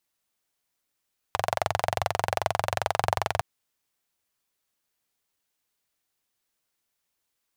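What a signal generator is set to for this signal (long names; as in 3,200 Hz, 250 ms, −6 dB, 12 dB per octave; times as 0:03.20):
pulse-train model of a single-cylinder engine, steady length 2.06 s, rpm 2,700, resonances 100/700 Hz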